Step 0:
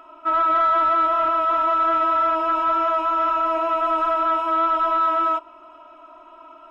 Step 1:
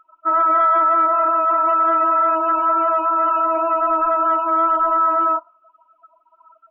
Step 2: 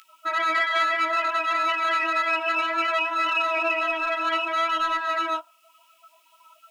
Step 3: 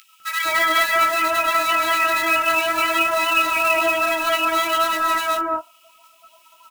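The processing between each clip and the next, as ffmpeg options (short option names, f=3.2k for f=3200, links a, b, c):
-af "afftdn=nr=31:nf=-29,volume=3dB"
-af "alimiter=limit=-16.5dB:level=0:latency=1:release=481,flanger=delay=16:depth=3.7:speed=0.62,aexciter=amount=13.9:drive=9.9:freq=2k"
-filter_complex "[0:a]acrusher=bits=3:mode=log:mix=0:aa=0.000001,acrossover=split=1500[a][b];[a]adelay=200[c];[c][b]amix=inputs=2:normalize=0,volume=6.5dB"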